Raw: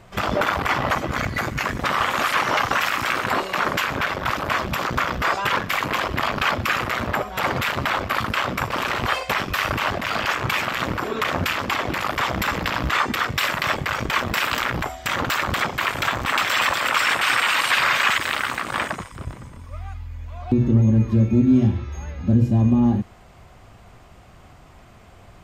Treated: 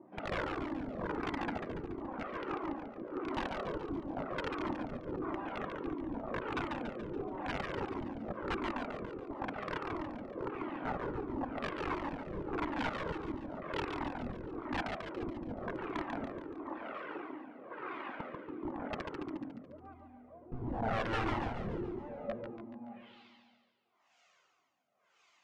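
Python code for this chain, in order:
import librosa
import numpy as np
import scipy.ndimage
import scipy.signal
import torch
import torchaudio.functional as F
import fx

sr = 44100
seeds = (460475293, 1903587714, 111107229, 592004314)

p1 = scipy.signal.sosfilt(scipy.signal.butter(2, 220.0, 'highpass', fs=sr, output='sos'), x)
p2 = fx.high_shelf(p1, sr, hz=11000.0, db=-5.5)
p3 = fx.notch(p2, sr, hz=1700.0, q=19.0)
p4 = fx.over_compress(p3, sr, threshold_db=-30.0, ratio=-0.5)
p5 = p3 + F.gain(torch.from_numpy(p4), -2.5).numpy()
p6 = fx.filter_sweep_bandpass(p5, sr, from_hz=310.0, to_hz=6500.0, start_s=21.9, end_s=23.44, q=3.5)
p7 = (np.mod(10.0 ** (26.5 / 20.0) * p6 + 1.0, 2.0) - 1.0) / 10.0 ** (26.5 / 20.0)
p8 = fx.filter_lfo_lowpass(p7, sr, shape='sine', hz=0.96, low_hz=290.0, high_hz=3100.0, q=0.99)
p9 = p8 + fx.echo_feedback(p8, sr, ms=142, feedback_pct=53, wet_db=-4.5, dry=0)
p10 = fx.comb_cascade(p9, sr, direction='falling', hz=1.5)
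y = F.gain(torch.from_numpy(p10), 1.5).numpy()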